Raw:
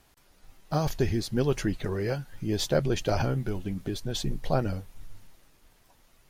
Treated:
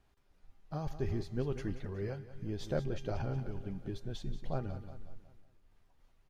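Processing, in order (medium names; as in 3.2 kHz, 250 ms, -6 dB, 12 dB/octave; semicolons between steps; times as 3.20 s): low-pass 2.7 kHz 6 dB/octave; bass shelf 130 Hz +7 dB; feedback comb 400 Hz, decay 0.75 s, mix 70%; on a send: feedback delay 183 ms, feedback 49%, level -12 dB; on the sum: random flutter of the level, depth 55%; trim +1 dB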